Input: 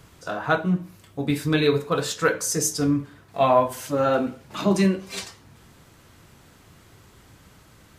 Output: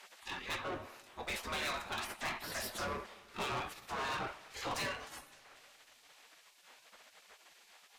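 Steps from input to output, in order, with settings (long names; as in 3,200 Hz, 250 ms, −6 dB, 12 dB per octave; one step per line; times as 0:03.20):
gate on every frequency bin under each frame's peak −20 dB weak
low-pass filter 2,300 Hz 6 dB per octave
low-shelf EQ 250 Hz −4.5 dB
in parallel at −2.5 dB: speech leveller within 4 dB 0.5 s
on the sum: tube saturation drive 37 dB, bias 0.4
on a send at −20 dB: convolution reverb RT60 2.7 s, pre-delay 100 ms
on the sum: level +2.5 dB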